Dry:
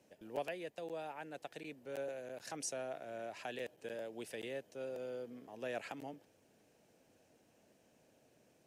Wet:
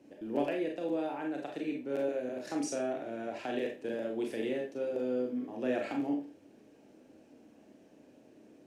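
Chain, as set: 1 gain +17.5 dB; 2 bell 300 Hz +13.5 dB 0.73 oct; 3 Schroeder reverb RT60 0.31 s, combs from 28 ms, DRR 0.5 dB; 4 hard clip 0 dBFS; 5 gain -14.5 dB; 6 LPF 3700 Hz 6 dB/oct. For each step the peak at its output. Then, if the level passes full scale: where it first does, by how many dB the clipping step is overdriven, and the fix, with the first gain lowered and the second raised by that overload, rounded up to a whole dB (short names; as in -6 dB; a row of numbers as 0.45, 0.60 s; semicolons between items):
-10.5, -6.0, -3.5, -3.5, -18.0, -18.0 dBFS; no overload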